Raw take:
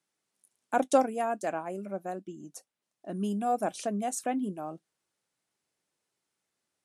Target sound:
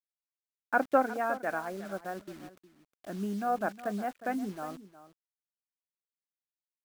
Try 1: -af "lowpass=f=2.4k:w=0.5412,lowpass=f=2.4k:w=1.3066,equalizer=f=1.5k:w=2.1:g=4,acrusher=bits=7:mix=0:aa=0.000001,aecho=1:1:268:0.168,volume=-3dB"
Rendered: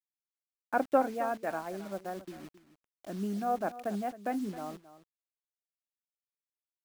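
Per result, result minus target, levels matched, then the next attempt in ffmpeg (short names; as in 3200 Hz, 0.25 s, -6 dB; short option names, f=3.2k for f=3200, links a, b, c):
echo 92 ms early; 2000 Hz band -5.0 dB
-af "lowpass=f=2.4k:w=0.5412,lowpass=f=2.4k:w=1.3066,equalizer=f=1.5k:w=2.1:g=4,acrusher=bits=7:mix=0:aa=0.000001,aecho=1:1:360:0.168,volume=-3dB"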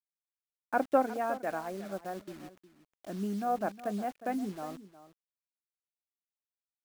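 2000 Hz band -5.0 dB
-af "lowpass=f=2.4k:w=0.5412,lowpass=f=2.4k:w=1.3066,equalizer=f=1.5k:w=2.1:g=11,acrusher=bits=7:mix=0:aa=0.000001,aecho=1:1:360:0.168,volume=-3dB"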